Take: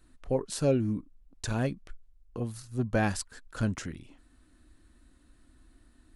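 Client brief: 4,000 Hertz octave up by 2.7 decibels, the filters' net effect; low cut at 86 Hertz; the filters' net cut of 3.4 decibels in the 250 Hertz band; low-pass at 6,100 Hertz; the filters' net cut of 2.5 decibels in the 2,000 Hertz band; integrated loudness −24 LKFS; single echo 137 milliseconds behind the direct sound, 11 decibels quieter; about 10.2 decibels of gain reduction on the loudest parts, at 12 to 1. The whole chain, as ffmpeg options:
ffmpeg -i in.wav -af "highpass=86,lowpass=6100,equalizer=frequency=250:width_type=o:gain=-4,equalizer=frequency=2000:width_type=o:gain=-4.5,equalizer=frequency=4000:width_type=o:gain=5.5,acompressor=threshold=-33dB:ratio=12,aecho=1:1:137:0.282,volume=16.5dB" out.wav

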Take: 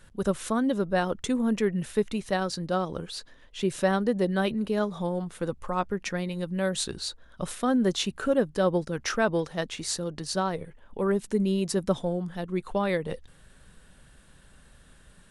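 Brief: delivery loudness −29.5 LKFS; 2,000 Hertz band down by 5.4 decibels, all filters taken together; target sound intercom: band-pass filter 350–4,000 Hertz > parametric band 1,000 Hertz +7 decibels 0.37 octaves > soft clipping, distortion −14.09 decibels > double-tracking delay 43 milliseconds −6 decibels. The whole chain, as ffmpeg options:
ffmpeg -i in.wav -filter_complex "[0:a]highpass=350,lowpass=4000,equalizer=frequency=1000:width_type=o:width=0.37:gain=7,equalizer=frequency=2000:width_type=o:gain=-8,asoftclip=threshold=-21dB,asplit=2[link_01][link_02];[link_02]adelay=43,volume=-6dB[link_03];[link_01][link_03]amix=inputs=2:normalize=0,volume=3dB" out.wav

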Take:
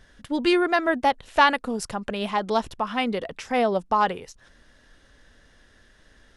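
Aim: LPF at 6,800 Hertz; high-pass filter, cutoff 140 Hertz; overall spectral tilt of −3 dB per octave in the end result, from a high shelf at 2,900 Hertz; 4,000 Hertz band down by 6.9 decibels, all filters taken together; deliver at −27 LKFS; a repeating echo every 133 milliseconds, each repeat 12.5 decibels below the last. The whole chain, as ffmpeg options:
ffmpeg -i in.wav -af "highpass=140,lowpass=6800,highshelf=frequency=2900:gain=-3.5,equalizer=frequency=4000:width_type=o:gain=-7,aecho=1:1:133|266|399:0.237|0.0569|0.0137,volume=-2.5dB" out.wav

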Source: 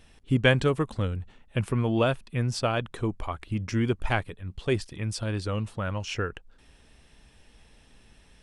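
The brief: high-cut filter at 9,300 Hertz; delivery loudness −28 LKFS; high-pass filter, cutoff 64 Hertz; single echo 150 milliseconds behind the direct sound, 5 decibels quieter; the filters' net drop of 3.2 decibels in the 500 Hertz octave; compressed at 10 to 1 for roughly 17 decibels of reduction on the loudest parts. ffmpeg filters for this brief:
ffmpeg -i in.wav -af "highpass=64,lowpass=9300,equalizer=frequency=500:width_type=o:gain=-4,acompressor=threshold=-35dB:ratio=10,aecho=1:1:150:0.562,volume=11dB" out.wav

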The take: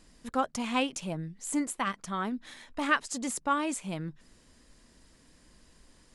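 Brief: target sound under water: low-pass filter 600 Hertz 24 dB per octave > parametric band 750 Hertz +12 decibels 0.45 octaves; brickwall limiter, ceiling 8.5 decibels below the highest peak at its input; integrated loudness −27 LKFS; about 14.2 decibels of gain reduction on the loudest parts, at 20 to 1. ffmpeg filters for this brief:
ffmpeg -i in.wav -af "acompressor=threshold=-34dB:ratio=20,alimiter=level_in=7.5dB:limit=-24dB:level=0:latency=1,volume=-7.5dB,lowpass=frequency=600:width=0.5412,lowpass=frequency=600:width=1.3066,equalizer=frequency=750:width_type=o:width=0.45:gain=12,volume=17dB" out.wav

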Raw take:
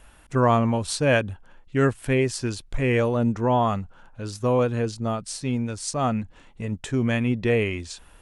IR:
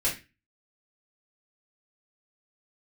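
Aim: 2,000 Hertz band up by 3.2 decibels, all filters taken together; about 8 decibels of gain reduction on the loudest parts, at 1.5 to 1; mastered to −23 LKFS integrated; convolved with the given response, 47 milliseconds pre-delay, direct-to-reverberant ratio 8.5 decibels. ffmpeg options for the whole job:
-filter_complex "[0:a]equalizer=frequency=2000:width_type=o:gain=4,acompressor=threshold=-37dB:ratio=1.5,asplit=2[link_01][link_02];[1:a]atrim=start_sample=2205,adelay=47[link_03];[link_02][link_03]afir=irnorm=-1:irlink=0,volume=-17dB[link_04];[link_01][link_04]amix=inputs=2:normalize=0,volume=7dB"

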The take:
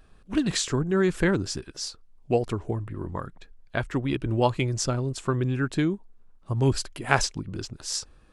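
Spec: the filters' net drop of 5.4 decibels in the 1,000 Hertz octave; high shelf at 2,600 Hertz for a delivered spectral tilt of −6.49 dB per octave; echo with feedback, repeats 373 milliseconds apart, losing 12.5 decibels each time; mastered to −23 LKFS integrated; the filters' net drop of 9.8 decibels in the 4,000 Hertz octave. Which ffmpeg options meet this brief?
ffmpeg -i in.wav -af "equalizer=frequency=1000:width_type=o:gain=-6,highshelf=frequency=2600:gain=-6,equalizer=frequency=4000:width_type=o:gain=-7,aecho=1:1:373|746|1119:0.237|0.0569|0.0137,volume=5.5dB" out.wav

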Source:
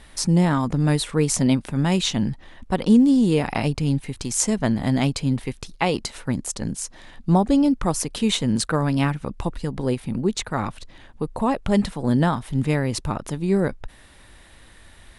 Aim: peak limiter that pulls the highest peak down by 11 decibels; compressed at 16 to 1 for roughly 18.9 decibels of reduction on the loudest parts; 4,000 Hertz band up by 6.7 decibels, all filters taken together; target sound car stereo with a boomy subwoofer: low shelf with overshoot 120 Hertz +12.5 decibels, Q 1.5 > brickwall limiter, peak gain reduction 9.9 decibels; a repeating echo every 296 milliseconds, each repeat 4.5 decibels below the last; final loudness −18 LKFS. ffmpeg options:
ffmpeg -i in.wav -af "equalizer=frequency=4000:width_type=o:gain=8,acompressor=threshold=-30dB:ratio=16,alimiter=level_in=1dB:limit=-24dB:level=0:latency=1,volume=-1dB,lowshelf=frequency=120:width_type=q:width=1.5:gain=12.5,aecho=1:1:296|592|888|1184|1480|1776|2072|2368|2664:0.596|0.357|0.214|0.129|0.0772|0.0463|0.0278|0.0167|0.01,volume=18dB,alimiter=limit=-7dB:level=0:latency=1" out.wav

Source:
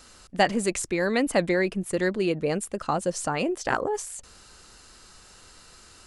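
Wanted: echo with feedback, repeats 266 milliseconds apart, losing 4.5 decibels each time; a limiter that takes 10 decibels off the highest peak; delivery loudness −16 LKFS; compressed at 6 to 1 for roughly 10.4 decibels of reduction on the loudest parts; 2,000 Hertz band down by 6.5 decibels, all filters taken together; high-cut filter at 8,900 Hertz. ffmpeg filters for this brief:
ffmpeg -i in.wav -af "lowpass=8900,equalizer=frequency=2000:width_type=o:gain=-8,acompressor=threshold=-28dB:ratio=6,alimiter=level_in=2.5dB:limit=-24dB:level=0:latency=1,volume=-2.5dB,aecho=1:1:266|532|798|1064|1330|1596|1862|2128|2394:0.596|0.357|0.214|0.129|0.0772|0.0463|0.0278|0.0167|0.01,volume=19dB" out.wav

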